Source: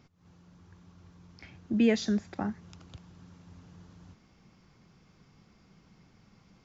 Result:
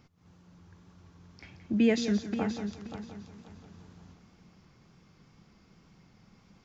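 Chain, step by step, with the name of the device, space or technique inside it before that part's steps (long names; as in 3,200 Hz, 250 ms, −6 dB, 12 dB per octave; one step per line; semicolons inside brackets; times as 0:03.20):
multi-head tape echo (echo machine with several playback heads 176 ms, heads first and third, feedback 41%, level −11 dB; tape wow and flutter 23 cents)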